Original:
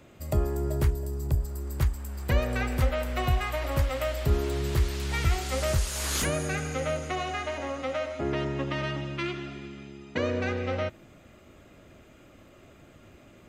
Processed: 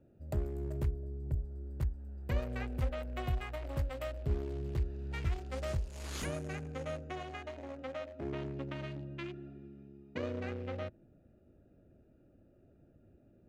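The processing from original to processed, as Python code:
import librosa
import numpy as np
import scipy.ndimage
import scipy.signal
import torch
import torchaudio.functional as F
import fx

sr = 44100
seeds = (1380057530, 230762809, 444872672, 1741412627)

y = fx.wiener(x, sr, points=41)
y = fx.high_shelf(y, sr, hz=7000.0, db=fx.steps((0.0, -3.5), (4.14, -10.5), (6.21, -4.5)))
y = y * librosa.db_to_amplitude(-8.5)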